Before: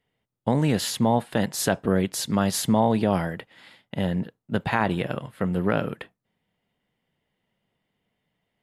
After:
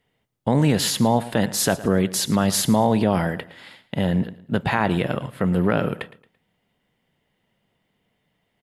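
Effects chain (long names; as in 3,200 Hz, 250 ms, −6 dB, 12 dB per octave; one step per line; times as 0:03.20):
in parallel at +2.5 dB: brickwall limiter −18 dBFS, peak gain reduction 11 dB
on the sum: repeating echo 112 ms, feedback 34%, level −17.5 dB
level −1.5 dB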